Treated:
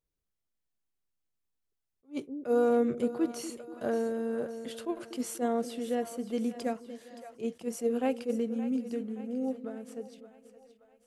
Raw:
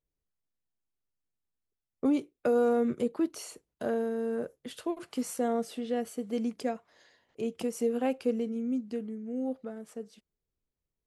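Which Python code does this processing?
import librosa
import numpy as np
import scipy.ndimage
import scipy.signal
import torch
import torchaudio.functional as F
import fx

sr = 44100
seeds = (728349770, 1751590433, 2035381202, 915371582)

y = fx.echo_split(x, sr, split_hz=520.0, low_ms=242, high_ms=572, feedback_pct=52, wet_db=-13.0)
y = fx.attack_slew(y, sr, db_per_s=320.0)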